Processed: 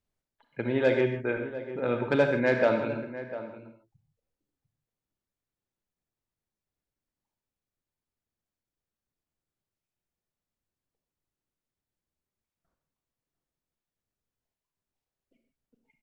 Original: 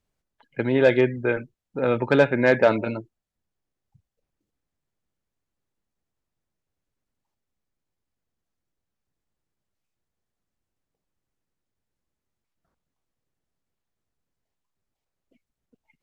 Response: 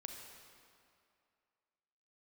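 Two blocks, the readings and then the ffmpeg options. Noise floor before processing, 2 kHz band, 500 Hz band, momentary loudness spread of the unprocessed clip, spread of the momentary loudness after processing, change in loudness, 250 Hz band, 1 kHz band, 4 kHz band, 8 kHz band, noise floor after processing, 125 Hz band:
-85 dBFS, -5.5 dB, -5.5 dB, 15 LU, 14 LU, -6.0 dB, -5.5 dB, -5.5 dB, -5.5 dB, n/a, under -85 dBFS, -5.5 dB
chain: -filter_complex "[0:a]asplit=2[a][b];[b]adelay=699.7,volume=-13dB,highshelf=f=4k:g=-15.7[c];[a][c]amix=inputs=2:normalize=0[d];[1:a]atrim=start_sample=2205,afade=t=out:st=0.21:d=0.01,atrim=end_sample=9702[e];[d][e]afir=irnorm=-1:irlink=0,volume=-1.5dB"

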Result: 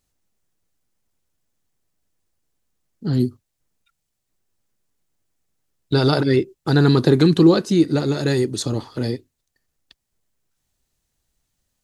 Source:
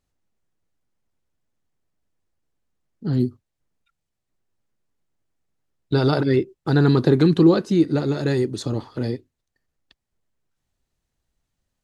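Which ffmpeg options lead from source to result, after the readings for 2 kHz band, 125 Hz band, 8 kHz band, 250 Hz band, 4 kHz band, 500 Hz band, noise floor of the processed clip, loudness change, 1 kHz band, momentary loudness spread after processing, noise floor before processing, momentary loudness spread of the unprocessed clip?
+3.0 dB, +1.5 dB, n/a, +1.5 dB, +6.0 dB, +1.5 dB, -77 dBFS, +1.5 dB, +2.0 dB, 12 LU, -81 dBFS, 12 LU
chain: -af "highshelf=f=4.2k:g=10,volume=1.5dB"

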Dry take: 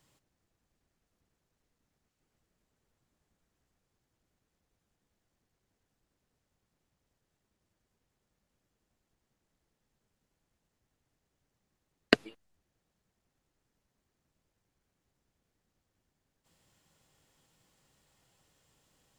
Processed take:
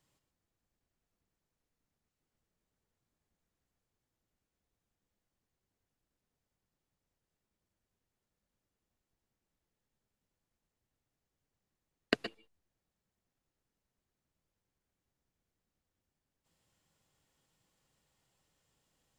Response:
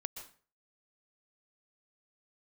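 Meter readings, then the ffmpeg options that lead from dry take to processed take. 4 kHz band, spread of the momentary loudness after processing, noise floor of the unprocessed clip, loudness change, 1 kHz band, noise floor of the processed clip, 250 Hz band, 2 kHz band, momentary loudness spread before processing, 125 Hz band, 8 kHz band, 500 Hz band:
-7.0 dB, 7 LU, -83 dBFS, -8.0 dB, -7.0 dB, under -85 dBFS, -7.5 dB, -7.0 dB, 0 LU, -7.0 dB, -7.0 dB, -7.0 dB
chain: -filter_complex "[1:a]atrim=start_sample=2205,afade=t=out:st=0.18:d=0.01,atrim=end_sample=8379[a];[0:a][a]afir=irnorm=-1:irlink=0,volume=-5dB"

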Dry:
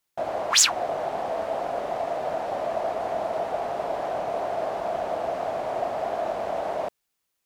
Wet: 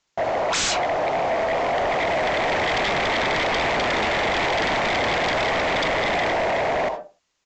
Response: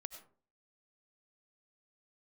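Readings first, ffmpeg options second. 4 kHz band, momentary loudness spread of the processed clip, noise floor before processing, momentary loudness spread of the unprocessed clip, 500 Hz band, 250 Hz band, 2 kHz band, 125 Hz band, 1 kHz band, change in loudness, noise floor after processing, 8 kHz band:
+4.0 dB, 2 LU, -79 dBFS, 8 LU, +4.0 dB, +10.0 dB, +14.0 dB, +12.0 dB, +5.5 dB, +5.5 dB, -73 dBFS, -5.0 dB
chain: -filter_complex "[0:a]dynaudnorm=f=350:g=9:m=7dB[a];[1:a]atrim=start_sample=2205,asetrate=66150,aresample=44100[b];[a][b]afir=irnorm=-1:irlink=0,aresample=16000,aeval=exprs='0.2*sin(PI/2*7.94*val(0)/0.2)':c=same,aresample=44100,volume=-5dB"

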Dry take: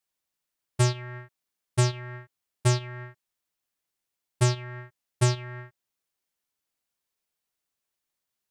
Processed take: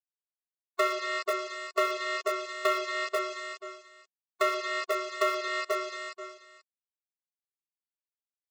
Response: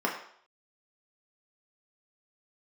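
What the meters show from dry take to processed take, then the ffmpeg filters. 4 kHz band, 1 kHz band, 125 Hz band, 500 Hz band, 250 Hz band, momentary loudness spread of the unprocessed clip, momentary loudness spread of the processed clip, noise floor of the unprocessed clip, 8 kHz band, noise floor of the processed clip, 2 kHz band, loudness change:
+1.0 dB, +7.5 dB, under -40 dB, +4.5 dB, n/a, 17 LU, 12 LU, -85 dBFS, -8.0 dB, under -85 dBFS, +7.0 dB, -3.0 dB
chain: -filter_complex "[0:a]asplit=2[a][b];[b]adelay=28,volume=-11.5dB[c];[a][c]amix=inputs=2:normalize=0[d];[1:a]atrim=start_sample=2205,afade=t=out:st=0.15:d=0.01,atrim=end_sample=7056[e];[d][e]afir=irnorm=-1:irlink=0,aresample=16000,acrusher=bits=4:mix=0:aa=0.000001,aresample=44100,aecho=1:1:484|968:0.316|0.0474,acrossover=split=5800[f][g];[g]acompressor=threshold=-52dB:ratio=4:attack=1:release=60[h];[f][h]amix=inputs=2:normalize=0,acrossover=split=370[i][j];[i]aeval=exprs='(mod(28.2*val(0)+1,2)-1)/28.2':c=same[k];[j]equalizer=f=910:w=3.1:g=8[l];[k][l]amix=inputs=2:normalize=0,acompressor=threshold=-29dB:ratio=3,afftfilt=real='re*eq(mod(floor(b*sr/1024/360),2),1)':imag='im*eq(mod(floor(b*sr/1024/360),2),1)':win_size=1024:overlap=0.75,volume=6dB"

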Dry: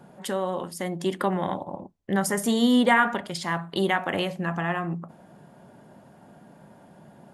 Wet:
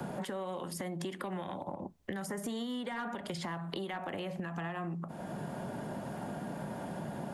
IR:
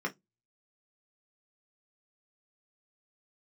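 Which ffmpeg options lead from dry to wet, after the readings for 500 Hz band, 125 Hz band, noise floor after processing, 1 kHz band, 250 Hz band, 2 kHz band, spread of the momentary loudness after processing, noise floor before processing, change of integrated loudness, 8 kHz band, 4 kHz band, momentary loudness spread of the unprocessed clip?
-11.0 dB, -7.0 dB, -45 dBFS, -12.5 dB, -12.0 dB, -15.5 dB, 4 LU, -53 dBFS, -14.0 dB, -12.0 dB, -12.5 dB, 13 LU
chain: -filter_complex "[0:a]acrossover=split=150|440|1800[a][b][c][d];[c]asoftclip=type=tanh:threshold=-19.5dB[e];[a][b][e][d]amix=inputs=4:normalize=0,acrossover=split=1100|2200[f][g][h];[f]acompressor=threshold=-34dB:ratio=4[i];[g]acompressor=threshold=-46dB:ratio=4[j];[h]acompressor=threshold=-48dB:ratio=4[k];[i][j][k]amix=inputs=3:normalize=0,alimiter=level_in=9dB:limit=-24dB:level=0:latency=1:release=415,volume=-9dB,acompressor=threshold=-48dB:ratio=6,volume=12.5dB"

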